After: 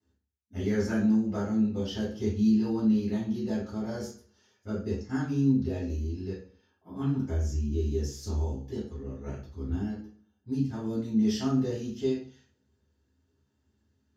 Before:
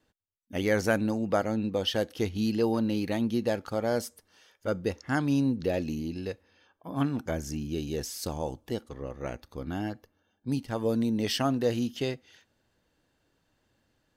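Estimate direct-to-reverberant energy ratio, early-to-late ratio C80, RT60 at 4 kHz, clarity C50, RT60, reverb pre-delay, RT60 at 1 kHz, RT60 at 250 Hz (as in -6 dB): -12.0 dB, 10.5 dB, 0.40 s, 4.5 dB, 0.45 s, 3 ms, 0.45 s, 0.55 s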